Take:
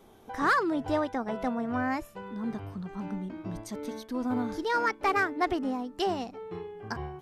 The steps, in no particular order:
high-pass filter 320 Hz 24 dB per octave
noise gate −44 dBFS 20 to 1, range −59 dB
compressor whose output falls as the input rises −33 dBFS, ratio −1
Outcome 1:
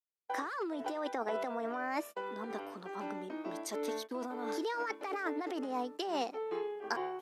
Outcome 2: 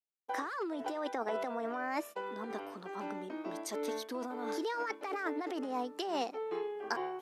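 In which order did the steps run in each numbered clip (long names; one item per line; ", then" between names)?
noise gate, then compressor whose output falls as the input rises, then high-pass filter
compressor whose output falls as the input rises, then noise gate, then high-pass filter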